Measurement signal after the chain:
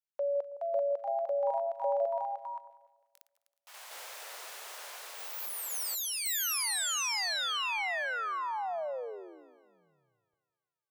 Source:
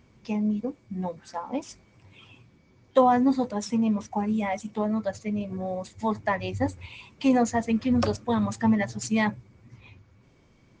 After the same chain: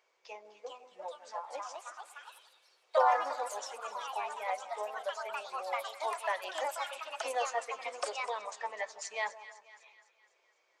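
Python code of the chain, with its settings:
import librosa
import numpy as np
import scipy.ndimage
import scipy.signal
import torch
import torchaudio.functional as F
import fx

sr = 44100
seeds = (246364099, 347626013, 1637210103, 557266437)

y = scipy.signal.sosfilt(scipy.signal.cheby2(4, 40, 250.0, 'highpass', fs=sr, output='sos'), x)
y = fx.echo_split(y, sr, split_hz=1200.0, low_ms=162, high_ms=252, feedback_pct=52, wet_db=-14.5)
y = fx.echo_pitch(y, sr, ms=452, semitones=3, count=3, db_per_echo=-3.0)
y = y * 10.0 ** (-7.0 / 20.0)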